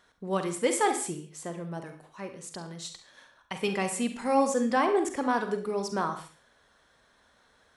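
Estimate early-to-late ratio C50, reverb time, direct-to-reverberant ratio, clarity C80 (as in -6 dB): 8.5 dB, no single decay rate, 6.5 dB, 13.0 dB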